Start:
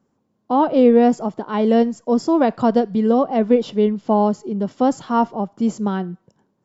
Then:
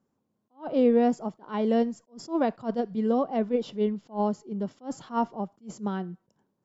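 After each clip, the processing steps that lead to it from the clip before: attack slew limiter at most 260 dB/s; gain -8.5 dB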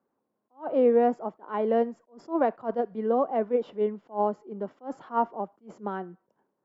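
three-band isolator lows -16 dB, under 300 Hz, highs -21 dB, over 2200 Hz; gain +3 dB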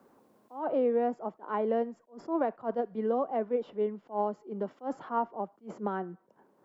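three-band squash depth 70%; gain -4.5 dB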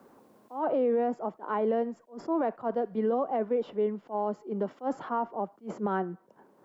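limiter -25 dBFS, peak gain reduction 7.5 dB; gain +5 dB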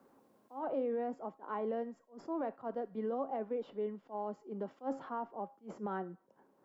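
resonator 270 Hz, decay 0.33 s, harmonics all, mix 60%; gain -2 dB

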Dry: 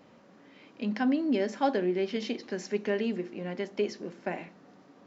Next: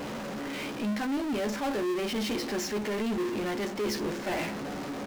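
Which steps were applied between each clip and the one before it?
reverse; compressor, threshold -35 dBFS, peak gain reduction 13.5 dB; reverse; doubler 14 ms -5 dB; power-law curve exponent 0.35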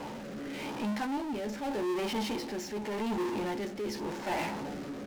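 bell 880 Hz +12 dB 0.25 oct; rotary speaker horn 0.85 Hz; gain -2 dB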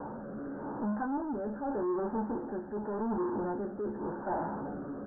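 steep low-pass 1600 Hz 96 dB/oct

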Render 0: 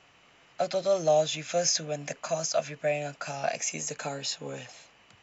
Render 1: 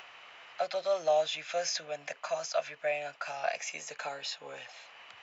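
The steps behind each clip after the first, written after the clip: three-band isolator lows -20 dB, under 560 Hz, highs -17 dB, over 4700 Hz; upward compressor, threshold -42 dBFS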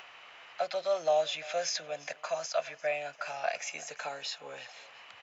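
feedback echo 0.346 s, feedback 36%, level -20 dB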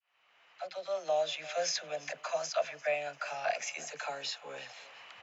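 opening faded in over 1.71 s; dispersion lows, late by 53 ms, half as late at 430 Hz

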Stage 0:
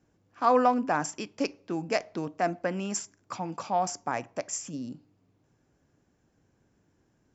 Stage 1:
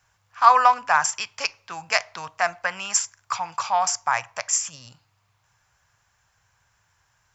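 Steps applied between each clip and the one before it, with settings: EQ curve 110 Hz 0 dB, 280 Hz -26 dB, 980 Hz +10 dB; gain +2 dB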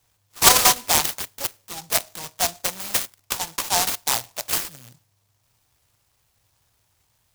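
noise-modulated delay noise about 5600 Hz, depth 0.22 ms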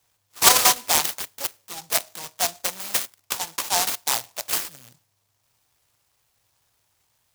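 low shelf 170 Hz -9 dB; gain -1 dB

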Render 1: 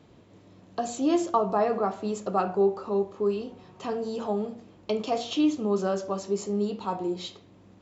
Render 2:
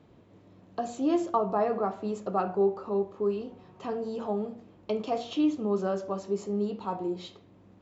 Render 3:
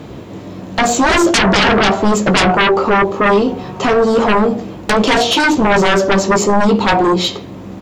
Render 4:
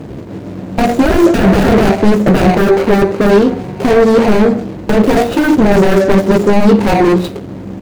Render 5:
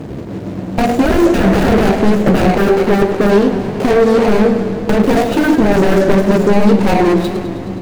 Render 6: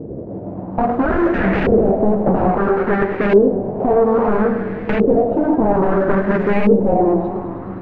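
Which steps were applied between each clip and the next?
high shelf 3700 Hz -10 dB; gain -2 dB
high shelf 5700 Hz +7.5 dB; sine folder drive 16 dB, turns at -14.5 dBFS; doubler 15 ms -10.5 dB; gain +6 dB
median filter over 41 samples; gain +5 dB
in parallel at +0.5 dB: compressor, threshold -15 dBFS, peak gain reduction 10.5 dB; on the sum: warbling echo 0.105 s, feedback 77%, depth 115 cents, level -12 dB; gain -5.5 dB
LFO low-pass saw up 0.6 Hz 450–2400 Hz; gain -6 dB

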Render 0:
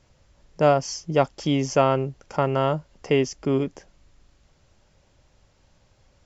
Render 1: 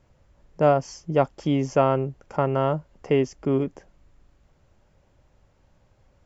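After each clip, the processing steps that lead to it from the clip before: bell 5000 Hz -10 dB 2 oct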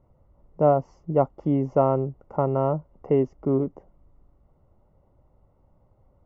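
polynomial smoothing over 65 samples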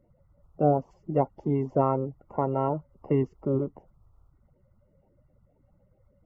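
bin magnitudes rounded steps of 30 dB; gain -3 dB

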